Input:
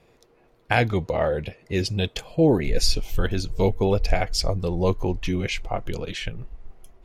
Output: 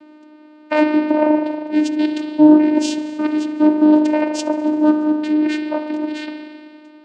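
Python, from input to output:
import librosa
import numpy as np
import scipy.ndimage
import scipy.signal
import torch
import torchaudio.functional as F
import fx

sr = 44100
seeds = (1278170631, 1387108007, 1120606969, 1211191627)

y = fx.rev_spring(x, sr, rt60_s=2.0, pass_ms=(39,), chirp_ms=35, drr_db=4.0)
y = fx.dmg_buzz(y, sr, base_hz=400.0, harmonics=10, level_db=-53.0, tilt_db=-5, odd_only=False)
y = fx.vocoder(y, sr, bands=8, carrier='saw', carrier_hz=304.0)
y = y * 10.0 ** (8.0 / 20.0)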